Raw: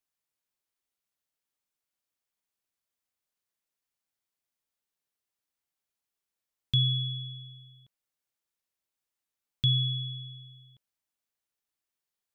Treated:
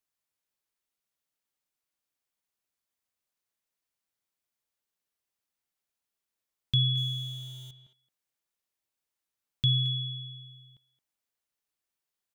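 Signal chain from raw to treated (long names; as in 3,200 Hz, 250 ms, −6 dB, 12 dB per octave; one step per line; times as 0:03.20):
0:06.97–0:07.71: converter with a step at zero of −44 dBFS
far-end echo of a speakerphone 220 ms, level −12 dB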